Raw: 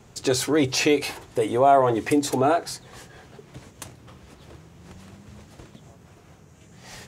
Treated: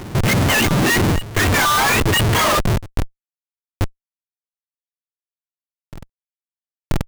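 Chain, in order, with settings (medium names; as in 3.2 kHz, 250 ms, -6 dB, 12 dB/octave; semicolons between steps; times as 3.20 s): spectrum inverted on a logarithmic axis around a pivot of 910 Hz; waveshaping leveller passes 1; Schmitt trigger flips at -26.5 dBFS; reverse echo 983 ms -16 dB; trim +8 dB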